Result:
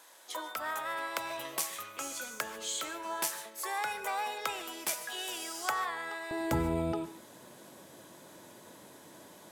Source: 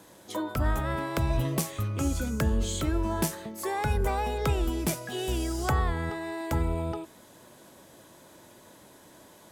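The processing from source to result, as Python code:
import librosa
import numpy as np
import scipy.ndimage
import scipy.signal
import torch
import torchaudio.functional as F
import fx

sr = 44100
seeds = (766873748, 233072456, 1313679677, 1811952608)

y = fx.highpass(x, sr, hz=fx.steps((0.0, 890.0), (6.31, 120.0)), slope=12)
y = fx.rev_gated(y, sr, seeds[0], gate_ms=170, shape='rising', drr_db=12.0)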